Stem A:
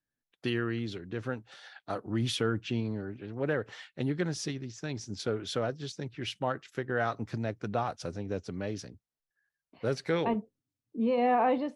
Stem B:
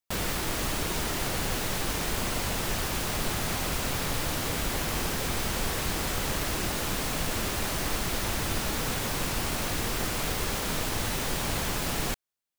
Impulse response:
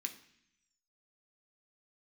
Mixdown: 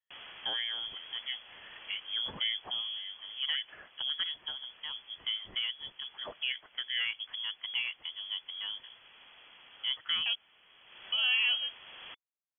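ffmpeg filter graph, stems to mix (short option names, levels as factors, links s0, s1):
-filter_complex "[0:a]volume=0.708,asplit=3[s0][s1][s2];[s0]atrim=end=10.35,asetpts=PTS-STARTPTS,afade=t=out:st=10.346:d=0.004:c=hsin[s3];[s1]atrim=start=10.35:end=11.12,asetpts=PTS-STARTPTS,volume=0[s4];[s2]atrim=start=11.12,asetpts=PTS-STARTPTS,afade=t=in:d=0.004:c=hsin[s5];[s3][s4][s5]concat=n=3:v=0:a=1,asplit=2[s6][s7];[1:a]bandreject=f=1300:w=19,volume=0.75,afade=t=out:st=2.8:d=0.28:silence=0.421697,afade=t=in:st=10.83:d=0.54:silence=0.237137[s8];[s7]apad=whole_len=555148[s9];[s8][s9]sidechaincompress=threshold=0.0141:ratio=6:attack=16:release=951[s10];[s6][s10]amix=inputs=2:normalize=0,highpass=150,lowpass=f=3000:t=q:w=0.5098,lowpass=f=3000:t=q:w=0.6013,lowpass=f=3000:t=q:w=0.9,lowpass=f=3000:t=q:w=2.563,afreqshift=-3500"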